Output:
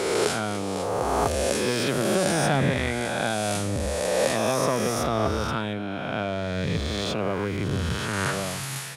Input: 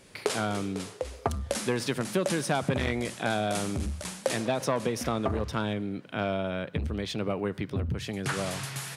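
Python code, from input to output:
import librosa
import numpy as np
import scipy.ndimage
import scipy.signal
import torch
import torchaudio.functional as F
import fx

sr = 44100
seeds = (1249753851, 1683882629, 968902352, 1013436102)

y = fx.spec_swells(x, sr, rise_s=2.35)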